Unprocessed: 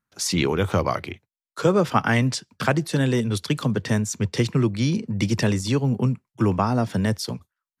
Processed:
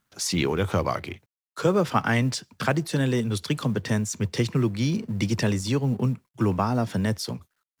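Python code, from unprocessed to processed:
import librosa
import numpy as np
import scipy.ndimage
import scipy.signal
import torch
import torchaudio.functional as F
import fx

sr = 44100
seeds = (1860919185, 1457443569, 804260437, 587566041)

y = fx.law_mismatch(x, sr, coded='mu')
y = F.gain(torch.from_numpy(y), -3.0).numpy()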